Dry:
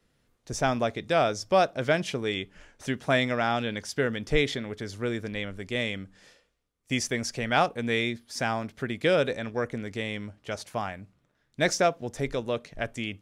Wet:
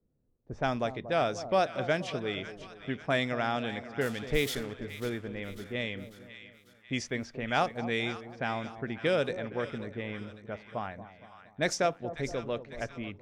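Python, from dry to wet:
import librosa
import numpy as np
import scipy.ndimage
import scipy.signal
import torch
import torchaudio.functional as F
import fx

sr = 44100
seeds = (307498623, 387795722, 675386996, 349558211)

y = fx.crossing_spikes(x, sr, level_db=-25.5, at=(4.01, 4.72))
y = fx.env_lowpass(y, sr, base_hz=460.0, full_db=-21.0)
y = fx.echo_split(y, sr, split_hz=1000.0, low_ms=234, high_ms=546, feedback_pct=52, wet_db=-12.5)
y = y * 10.0 ** (-4.5 / 20.0)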